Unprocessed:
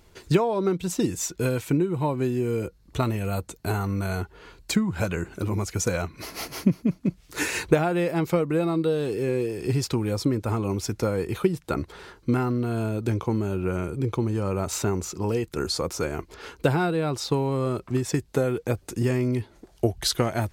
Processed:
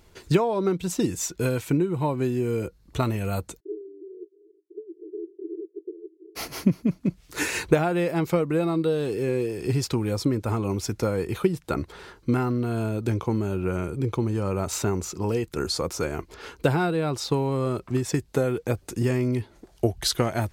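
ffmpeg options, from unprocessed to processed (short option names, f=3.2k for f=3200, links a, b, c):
-filter_complex "[0:a]asplit=3[a][b][c];[a]afade=t=out:st=3.59:d=0.02[d];[b]asuperpass=centerf=370:order=12:qfactor=3.1,afade=t=in:st=3.59:d=0.02,afade=t=out:st=6.35:d=0.02[e];[c]afade=t=in:st=6.35:d=0.02[f];[d][e][f]amix=inputs=3:normalize=0"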